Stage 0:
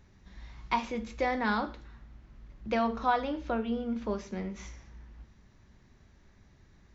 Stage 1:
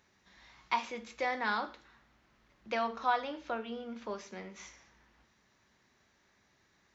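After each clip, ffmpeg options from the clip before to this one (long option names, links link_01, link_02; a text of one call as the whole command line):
ffmpeg -i in.wav -af "highpass=frequency=800:poles=1" out.wav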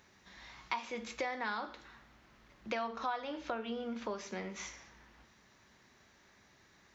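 ffmpeg -i in.wav -af "acompressor=threshold=-41dB:ratio=4,volume=5.5dB" out.wav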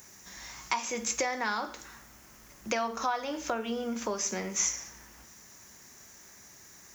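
ffmpeg -i in.wav -af "aexciter=amount=6.3:drive=7.9:freq=5700,volume=6dB" out.wav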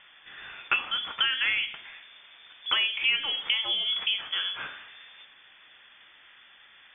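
ffmpeg -i in.wav -af "lowpass=frequency=3100:width_type=q:width=0.5098,lowpass=frequency=3100:width_type=q:width=0.6013,lowpass=frequency=3100:width_type=q:width=0.9,lowpass=frequency=3100:width_type=q:width=2.563,afreqshift=-3600,volume=5dB" out.wav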